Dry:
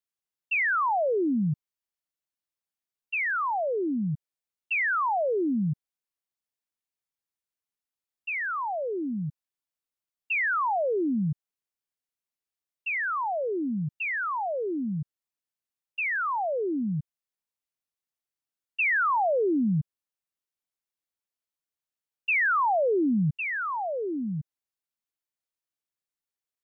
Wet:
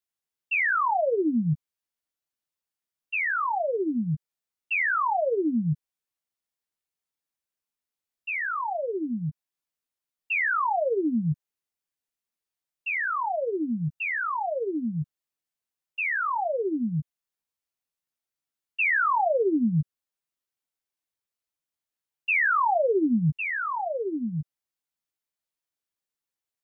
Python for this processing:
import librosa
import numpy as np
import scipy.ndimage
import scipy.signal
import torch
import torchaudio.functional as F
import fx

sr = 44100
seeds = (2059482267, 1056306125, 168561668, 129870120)

y = fx.doubler(x, sr, ms=13.0, db=-6.0)